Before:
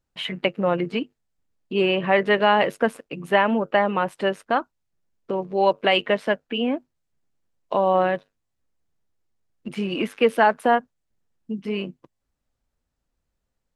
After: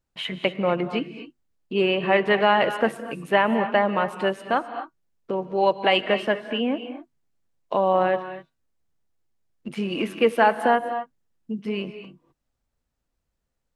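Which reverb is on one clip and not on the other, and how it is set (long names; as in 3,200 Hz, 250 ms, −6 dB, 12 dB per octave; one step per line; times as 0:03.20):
reverb whose tail is shaped and stops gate 280 ms rising, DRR 9.5 dB
level −1 dB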